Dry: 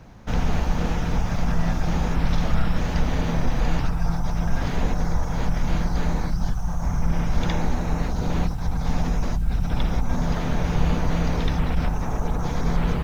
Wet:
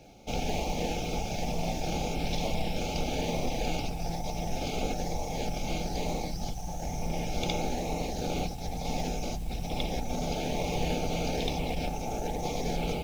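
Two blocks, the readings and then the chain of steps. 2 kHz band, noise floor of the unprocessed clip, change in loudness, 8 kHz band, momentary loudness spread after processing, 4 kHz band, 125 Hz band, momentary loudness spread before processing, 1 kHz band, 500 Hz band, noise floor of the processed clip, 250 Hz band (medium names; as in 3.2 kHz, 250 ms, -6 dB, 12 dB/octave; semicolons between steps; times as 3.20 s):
-6.0 dB, -27 dBFS, -7.0 dB, no reading, 4 LU, +1.0 dB, -11.0 dB, 3 LU, -3.0 dB, -0.5 dB, -36 dBFS, -7.5 dB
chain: brick-wall FIR band-stop 890–2100 Hz; tone controls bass -15 dB, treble +2 dB; in parallel at -10.5 dB: decimation with a swept rate 39×, swing 60% 1.1 Hz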